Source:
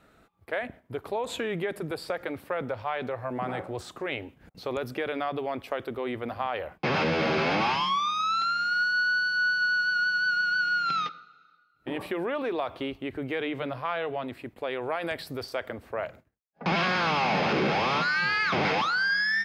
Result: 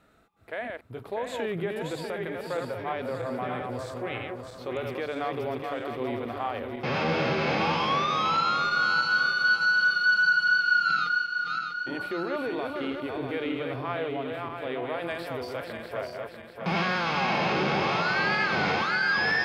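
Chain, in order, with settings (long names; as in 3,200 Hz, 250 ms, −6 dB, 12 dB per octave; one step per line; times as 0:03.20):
feedback delay that plays each chunk backwards 322 ms, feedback 67%, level −4 dB
harmonic and percussive parts rebalanced percussive −7 dB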